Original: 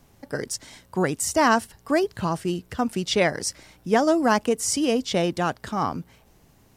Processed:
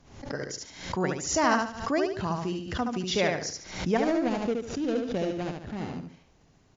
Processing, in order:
0:03.97–0:05.96: running median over 41 samples
linear-phase brick-wall low-pass 7,300 Hz
repeating echo 72 ms, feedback 32%, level −4 dB
background raised ahead of every attack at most 87 dB per second
level −6 dB

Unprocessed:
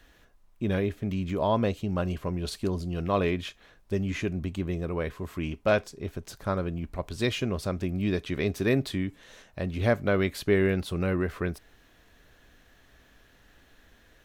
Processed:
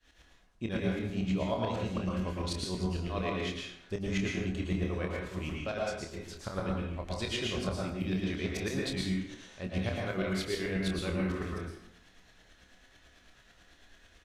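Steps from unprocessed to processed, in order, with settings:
low-pass filter 7,500 Hz 12 dB per octave
high-shelf EQ 2,100 Hz +9 dB
brickwall limiter −19.5 dBFS, peak gain reduction 11 dB
shaped tremolo saw up 9.1 Hz, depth 95%
double-tracking delay 27 ms −7 dB
dense smooth reverb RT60 0.75 s, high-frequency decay 0.7×, pre-delay 100 ms, DRR −2 dB
level −4 dB

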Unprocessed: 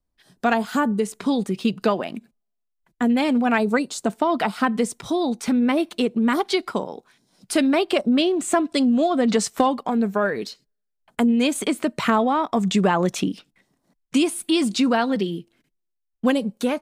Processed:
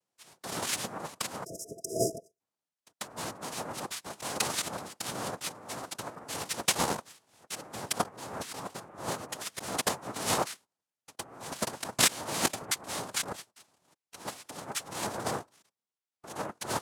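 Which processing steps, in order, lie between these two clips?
compressor whose output falls as the input rises −26 dBFS, ratio −0.5
three-way crossover with the lows and the highs turned down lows −17 dB, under 500 Hz, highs −24 dB, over 3,300 Hz
cochlear-implant simulation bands 2
time-frequency box erased 0:01.45–0:02.40, 670–3,900 Hz
formants moved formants +4 semitones

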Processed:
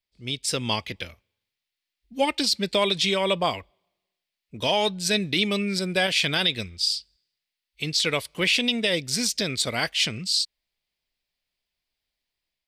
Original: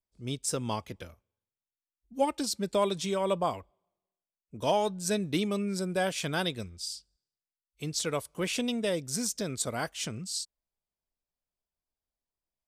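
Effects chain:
flat-topped bell 3,000 Hz +12 dB
brickwall limiter −16 dBFS, peak gain reduction 7.5 dB
automatic gain control gain up to 4.5 dB

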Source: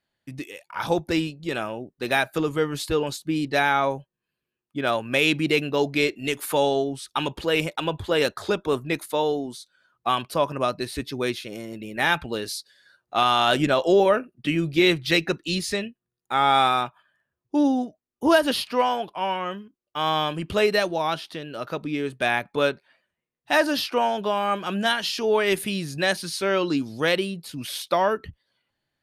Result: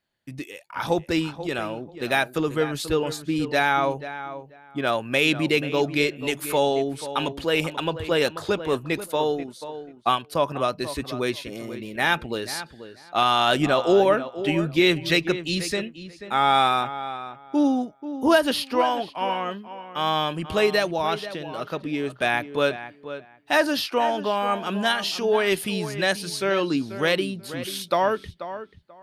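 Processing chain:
feedback echo with a low-pass in the loop 486 ms, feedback 19%, low-pass 2,500 Hz, level −12 dB
0:09.29–0:10.36: transient designer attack +3 dB, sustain −6 dB

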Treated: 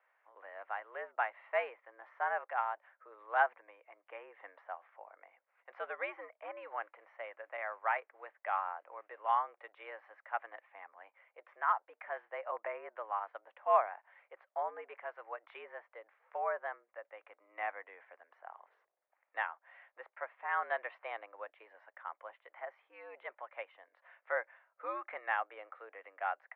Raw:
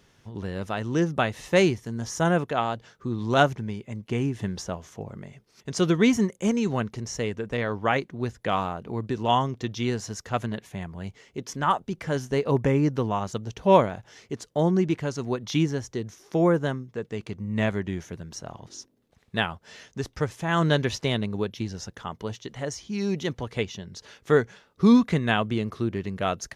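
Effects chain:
0:06.79–0:09.15: noise that follows the level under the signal 26 dB
single-sideband voice off tune +99 Hz 580–2,100 Hz
level −7.5 dB

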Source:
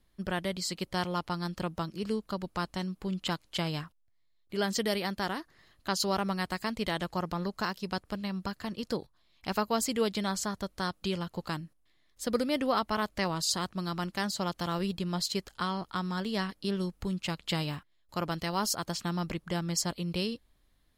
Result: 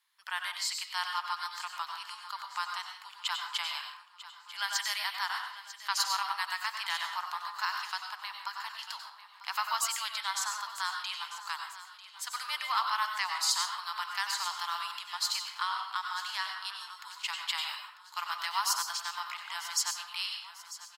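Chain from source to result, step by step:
elliptic high-pass filter 930 Hz, stop band 50 dB
repeating echo 945 ms, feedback 49%, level −15 dB
on a send at −4 dB: convolution reverb RT60 0.55 s, pre-delay 88 ms
on the sum: level +2 dB

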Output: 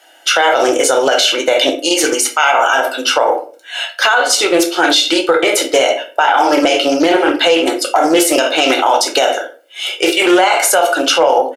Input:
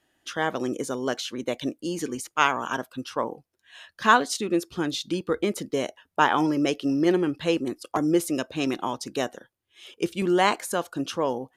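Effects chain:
elliptic high-pass filter 320 Hz, stop band 40 dB
comb filter 1.4 ms, depth 67%
on a send at −3 dB: parametric band 2,700 Hz +5 dB 0.74 octaves + convolution reverb RT60 0.40 s, pre-delay 4 ms
on the sum: downward compressor 10 to 1, threshold −23 dBFS, peak gain reduction 14 dB
mains-hum notches 60/120/180/240/300/360/420/480/540 Hz
boost into a limiter +23 dB
highs frequency-modulated by the lows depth 0.13 ms
level −1 dB

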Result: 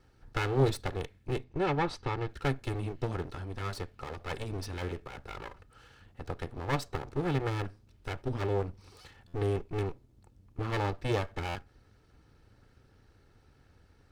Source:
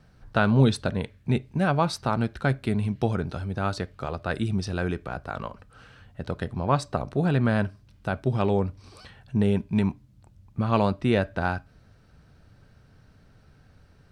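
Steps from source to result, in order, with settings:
lower of the sound and its delayed copy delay 2.3 ms
0:01.44–0:02.29: high-frequency loss of the air 94 metres
buffer that repeats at 0:09.27/0:11.48, samples 512, times 5
level −4.5 dB

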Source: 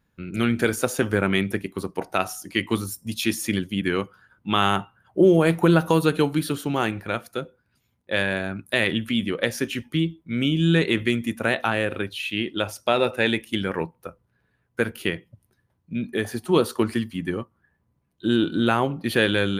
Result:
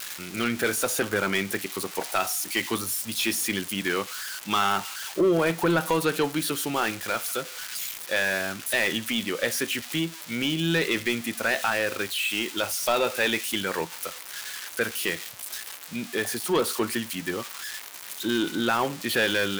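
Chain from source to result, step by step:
spike at every zero crossing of −19.5 dBFS
mid-hump overdrive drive 16 dB, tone 4,500 Hz, clips at −5.5 dBFS
level −7 dB

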